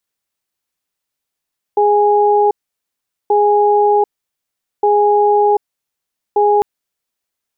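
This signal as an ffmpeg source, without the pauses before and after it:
-f lavfi -i "aevalsrc='0.266*(sin(2*PI*414*t)+sin(2*PI*827*t))*clip(min(mod(t,1.53),0.74-mod(t,1.53))/0.005,0,1)':d=4.85:s=44100"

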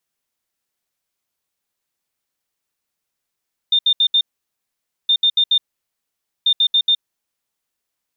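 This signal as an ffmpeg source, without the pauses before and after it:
-f lavfi -i "aevalsrc='0.282*sin(2*PI*3620*t)*clip(min(mod(mod(t,1.37),0.14),0.07-mod(mod(t,1.37),0.14))/0.005,0,1)*lt(mod(t,1.37),0.56)':d=4.11:s=44100"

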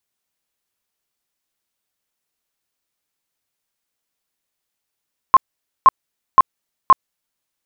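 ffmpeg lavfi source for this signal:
-f lavfi -i "aevalsrc='0.668*sin(2*PI*1060*mod(t,0.52))*lt(mod(t,0.52),29/1060)':d=2.08:s=44100"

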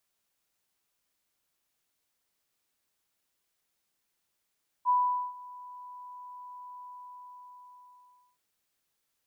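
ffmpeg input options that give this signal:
-f lavfi -i "aevalsrc='0.0944*sin(2*PI*991*t)':d=3.53:s=44100,afade=t=in:d=0.042,afade=t=out:st=0.042:d=0.437:silence=0.0794,afade=t=out:st=1.95:d=1.58"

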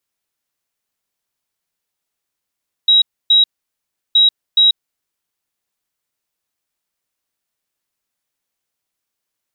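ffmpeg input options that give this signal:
-f lavfi -i "aevalsrc='0.447*sin(2*PI*3840*t)*clip(min(mod(mod(t,1.27),0.42),0.14-mod(mod(t,1.27),0.42))/0.005,0,1)*lt(mod(t,1.27),0.84)':d=2.54:s=44100"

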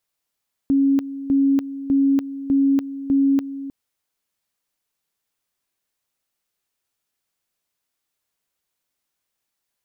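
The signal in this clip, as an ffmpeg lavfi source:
-f lavfi -i "aevalsrc='pow(10,(-13.5-14*gte(mod(t,0.6),0.29))/20)*sin(2*PI*275*t)':d=3:s=44100"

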